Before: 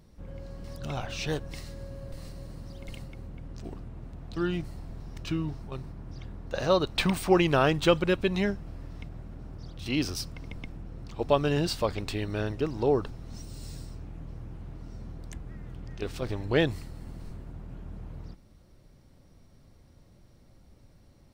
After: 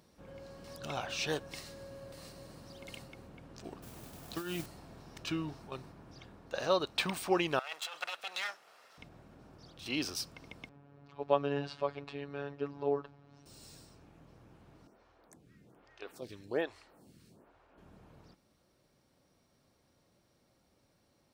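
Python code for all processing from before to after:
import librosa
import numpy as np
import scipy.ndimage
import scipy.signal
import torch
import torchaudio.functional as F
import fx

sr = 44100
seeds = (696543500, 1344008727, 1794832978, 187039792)

y = fx.chain(x, sr, fx.over_compress(threshold_db=-31.0, ratio=-0.5),
    fx.mod_noise(seeds[0], snr_db=18), at=(3.82, 4.66))
y = fx.chain(y, sr, fx.lower_of_two(delay_ms=1.5),
    fx.highpass(hz=970.0, slope=12),
    fx.over_compress(threshold_db=-35.0, ratio=-1.0), at=(7.59, 8.98))
y = fx.chain(y, sr, fx.robotise(hz=142.0),
    fx.bessel_lowpass(hz=2000.0, order=2), at=(10.69, 13.46))
y = fx.chain(y, sr, fx.low_shelf(hz=100.0, db=-5.5),
    fx.stagger_phaser(hz=1.2), at=(14.87, 17.78))
y = fx.highpass(y, sr, hz=460.0, slope=6)
y = fx.notch(y, sr, hz=2000.0, q=19.0)
y = fx.rider(y, sr, range_db=4, speed_s=2.0)
y = F.gain(torch.from_numpy(y), -3.5).numpy()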